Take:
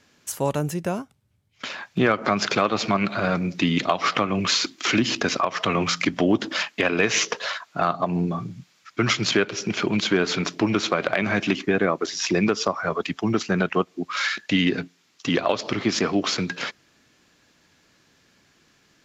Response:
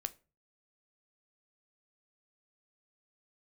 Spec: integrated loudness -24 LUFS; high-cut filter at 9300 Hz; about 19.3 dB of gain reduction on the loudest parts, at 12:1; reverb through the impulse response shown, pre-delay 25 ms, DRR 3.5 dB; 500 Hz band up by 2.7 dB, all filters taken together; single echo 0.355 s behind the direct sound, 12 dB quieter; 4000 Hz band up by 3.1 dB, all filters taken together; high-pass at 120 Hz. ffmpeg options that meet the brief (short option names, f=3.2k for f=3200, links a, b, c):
-filter_complex "[0:a]highpass=120,lowpass=9.3k,equalizer=f=500:t=o:g=3.5,equalizer=f=4k:t=o:g=4,acompressor=threshold=-34dB:ratio=12,aecho=1:1:355:0.251,asplit=2[a][b];[1:a]atrim=start_sample=2205,adelay=25[c];[b][c]afir=irnorm=-1:irlink=0,volume=-2dB[d];[a][d]amix=inputs=2:normalize=0,volume=12dB"